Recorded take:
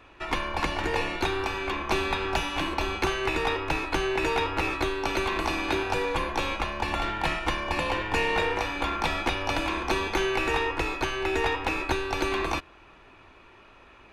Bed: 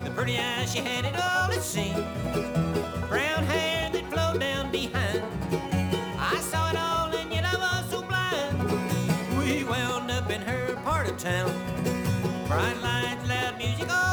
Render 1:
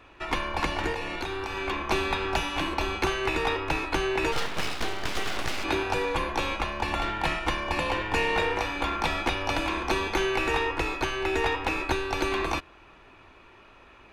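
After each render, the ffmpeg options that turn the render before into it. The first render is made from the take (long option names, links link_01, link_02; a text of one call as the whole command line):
ffmpeg -i in.wav -filter_complex "[0:a]asettb=1/sr,asplit=3[link_01][link_02][link_03];[link_01]atrim=end=0.924[link_04];[link_02]atrim=start=0.92:end=1.57,asetpts=PTS-STARTPTS,afade=type=in:duration=0.004:curve=qsin,afade=type=out:start_time=0.646:duration=0.004:curve=qsin,acompressor=threshold=-28dB:ratio=6:attack=3.2:release=140:knee=1:detection=peak[link_05];[link_03]atrim=start=1.566[link_06];[link_04][link_05]acrossfade=duration=0.004:curve1=hsin:curve2=qsin[link_07];[link_07][link_06]acrossfade=duration=0.004:curve1=qsin:curve2=hsin,asplit=3[link_08][link_09][link_10];[link_08]afade=type=out:start_time=4.31:duration=0.02[link_11];[link_09]aeval=exprs='abs(val(0))':channel_layout=same,afade=type=in:start_time=4.31:duration=0.02,afade=type=out:start_time=5.63:duration=0.02[link_12];[link_10]afade=type=in:start_time=5.63:duration=0.02[link_13];[link_11][link_12][link_13]amix=inputs=3:normalize=0" out.wav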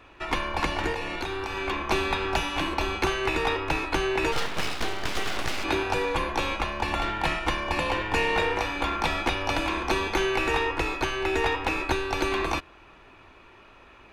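ffmpeg -i in.wav -af "volume=1dB" out.wav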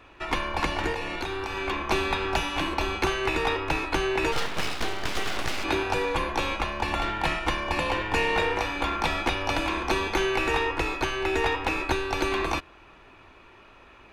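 ffmpeg -i in.wav -af anull out.wav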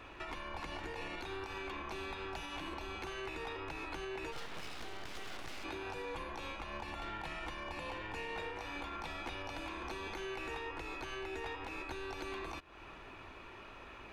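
ffmpeg -i in.wav -af "acompressor=threshold=-38dB:ratio=3,alimiter=level_in=9.5dB:limit=-24dB:level=0:latency=1:release=193,volume=-9.5dB" out.wav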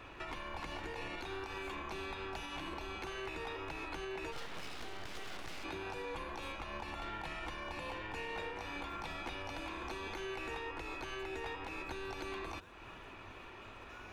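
ffmpeg -i in.wav -i bed.wav -filter_complex "[1:a]volume=-34dB[link_01];[0:a][link_01]amix=inputs=2:normalize=0" out.wav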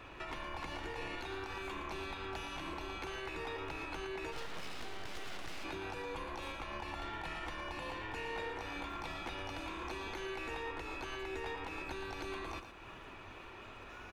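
ffmpeg -i in.wav -af "aecho=1:1:115:0.355" out.wav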